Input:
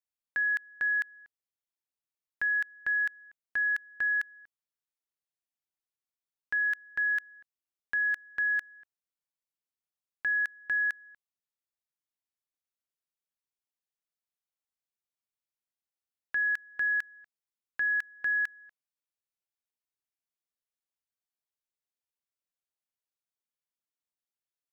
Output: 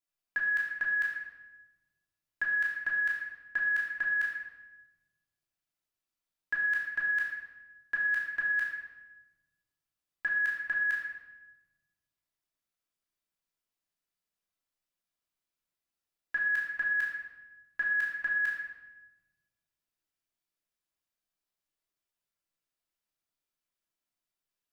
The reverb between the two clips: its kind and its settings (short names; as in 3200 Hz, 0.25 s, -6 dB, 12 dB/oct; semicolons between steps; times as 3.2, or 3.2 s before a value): shoebox room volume 650 m³, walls mixed, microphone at 3 m; gain -3 dB